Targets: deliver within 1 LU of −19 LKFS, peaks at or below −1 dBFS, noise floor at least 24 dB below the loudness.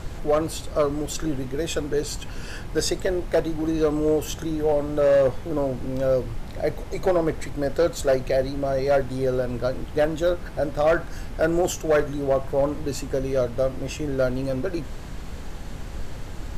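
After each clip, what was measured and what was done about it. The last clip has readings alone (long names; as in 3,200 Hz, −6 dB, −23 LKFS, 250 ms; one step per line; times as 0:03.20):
share of clipped samples 0.6%; peaks flattened at −13.5 dBFS; background noise floor −35 dBFS; target noise floor −49 dBFS; integrated loudness −24.5 LKFS; sample peak −13.5 dBFS; target loudness −19.0 LKFS
→ clipped peaks rebuilt −13.5 dBFS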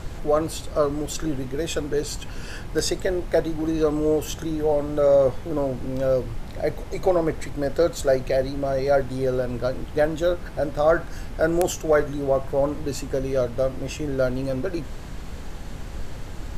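share of clipped samples 0.0%; background noise floor −35 dBFS; target noise floor −49 dBFS
→ noise reduction from a noise print 14 dB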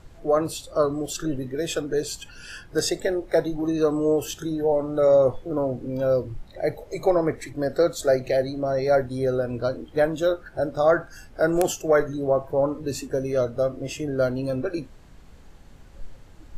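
background noise floor −48 dBFS; target noise floor −49 dBFS
→ noise reduction from a noise print 6 dB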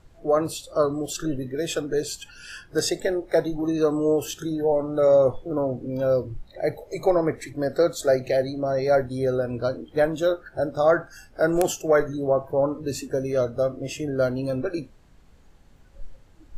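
background noise floor −53 dBFS; integrated loudness −24.5 LKFS; sample peak −4.5 dBFS; target loudness −19.0 LKFS
→ level +5.5 dB
brickwall limiter −1 dBFS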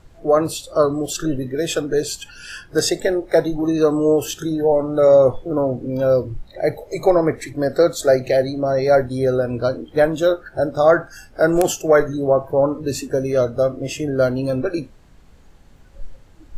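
integrated loudness −19.0 LKFS; sample peak −1.0 dBFS; background noise floor −47 dBFS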